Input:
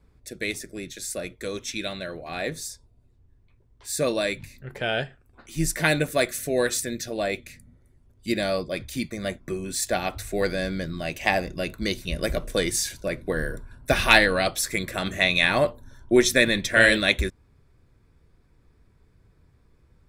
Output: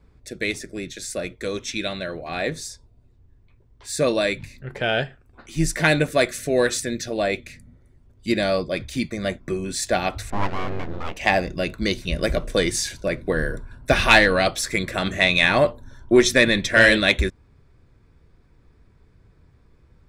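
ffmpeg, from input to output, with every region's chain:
ffmpeg -i in.wav -filter_complex "[0:a]asettb=1/sr,asplit=3[link_01][link_02][link_03];[link_01]atrim=end=10.304[link_04];[link_02]atrim=start=10.3:end=11.17,asetpts=PTS-STARTPTS,afade=type=in:duration=0.004:curve=qsin,afade=type=out:start_time=0.866:duration=0.004:curve=qsin,lowpass=1600,aeval=exprs='abs(val(0))':channel_layout=same[link_05];[link_03]atrim=start=11.166[link_06];[link_04][link_05]acrossfade=duration=0.004:curve1=hsin:curve2=qsin[link_07];[link_07][link_06]acrossfade=duration=0.004:curve1=qsin:curve2=hsin,equalizer=frequency=14000:width_type=o:width=0.87:gain=-12.5,acontrast=44,volume=-1.5dB" out.wav

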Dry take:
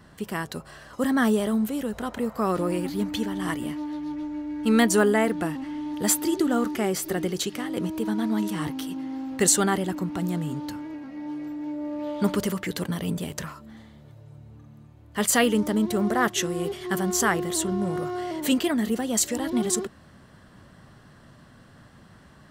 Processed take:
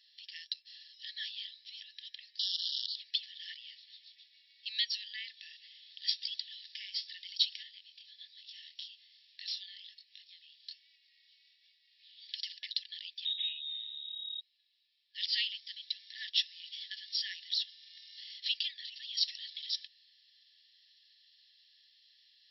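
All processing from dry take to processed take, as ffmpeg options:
ffmpeg -i in.wav -filter_complex "[0:a]asettb=1/sr,asplit=3[link_01][link_02][link_03];[link_01]atrim=end=2.394[link_04];[link_02]atrim=start=2.39:end=2.96,asetpts=PTS-STARTPTS,afade=type=in:duration=0.004:curve=qsin,afade=type=out:start_time=0.566:duration=0.004:curve=qsin,highshelf=frequency=4500:gain=8,aeval=exprs='(mod(13.3*val(0)+1,2)-1)/13.3':channel_layout=same,asuperstop=centerf=2200:order=20:qfactor=1.8[link_05];[link_03]atrim=start=2.956[link_06];[link_04][link_05]acrossfade=duration=0.004:curve1=hsin:curve2=qsin[link_07];[link_07][link_06]acrossfade=duration=0.004:curve1=qsin:curve2=hsin,asettb=1/sr,asplit=3[link_08][link_09][link_10];[link_08]atrim=end=7.634[link_11];[link_09]atrim=start=7.63:end=12.29,asetpts=PTS-STARTPTS,afade=type=in:duration=0.004:curve=qsin,afade=type=out:start_time=4.656:duration=0.004:curve=qsin,aeval=exprs='(mod(2.99*val(0)+1,2)-1)/2.99':channel_layout=same,acompressor=threshold=-29dB:ratio=2:attack=3.2:release=140:knee=1:detection=peak,flanger=delay=20:depth=7.4:speed=1.2[link_12];[link_10]atrim=start=12.286[link_13];[link_11][link_12]acrossfade=duration=0.004:curve1=hsin:curve2=qsin[link_14];[link_14][link_13]acrossfade=duration=0.004:curve1=qsin:curve2=hsin,asettb=1/sr,asplit=3[link_15][link_16][link_17];[link_15]atrim=end=13.254[link_18];[link_16]atrim=start=13.25:end=14.41,asetpts=PTS-STARTPTS,afade=type=in:duration=0.004:curve=qsin,afade=type=out:start_time=1.156:duration=0.004:curve=qsin,aeval=exprs='0.0251*(abs(mod(val(0)/0.0251+3,4)-2)-1)':channel_layout=same,lowpass=frequency=3300:width_type=q:width=0.5098,lowpass=frequency=3300:width_type=q:width=0.6013,lowpass=frequency=3300:width_type=q:width=0.9,lowpass=frequency=3300:width_type=q:width=2.563,afreqshift=-3900[link_19];[link_17]atrim=start=14.406[link_20];[link_18][link_19]acrossfade=duration=0.004:curve1=hsin:curve2=qsin[link_21];[link_21][link_20]acrossfade=duration=0.004:curve1=qsin:curve2=hsin,equalizer=frequency=4100:width=0.42:gain=-14,afftfilt=real='re*between(b*sr/4096,1700,5600)':imag='im*between(b*sr/4096,1700,5600)':win_size=4096:overlap=0.75,highshelf=frequency=2700:width_type=q:width=3:gain=11.5" out.wav

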